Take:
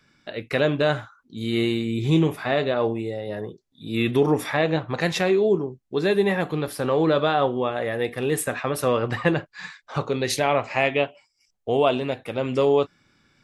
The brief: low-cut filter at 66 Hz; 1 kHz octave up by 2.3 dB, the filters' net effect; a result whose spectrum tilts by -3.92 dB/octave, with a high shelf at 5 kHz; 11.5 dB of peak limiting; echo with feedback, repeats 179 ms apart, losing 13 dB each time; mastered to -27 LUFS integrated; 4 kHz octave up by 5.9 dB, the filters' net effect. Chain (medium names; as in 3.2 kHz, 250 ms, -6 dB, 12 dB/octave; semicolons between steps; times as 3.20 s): high-pass 66 Hz; peaking EQ 1 kHz +3 dB; peaking EQ 4 kHz +8.5 dB; treble shelf 5 kHz -4 dB; peak limiter -14 dBFS; feedback delay 179 ms, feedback 22%, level -13 dB; trim -1 dB